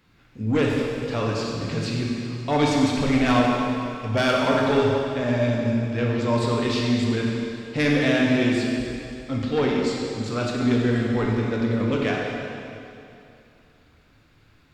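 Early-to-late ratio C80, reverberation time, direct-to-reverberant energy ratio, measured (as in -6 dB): 1.0 dB, 2.7 s, -2.5 dB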